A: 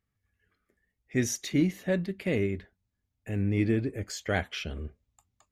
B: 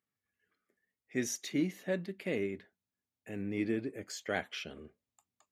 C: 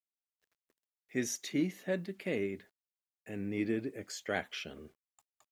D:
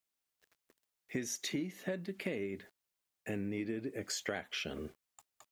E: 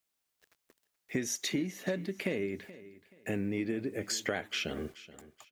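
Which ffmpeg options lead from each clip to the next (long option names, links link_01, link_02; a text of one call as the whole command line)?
ffmpeg -i in.wav -af "highpass=210,volume=-5dB" out.wav
ffmpeg -i in.wav -af "acrusher=bits=11:mix=0:aa=0.000001" out.wav
ffmpeg -i in.wav -af "acompressor=threshold=-42dB:ratio=12,volume=8dB" out.wav
ffmpeg -i in.wav -af "aecho=1:1:428|856|1284:0.133|0.0387|0.0112,volume=4.5dB" out.wav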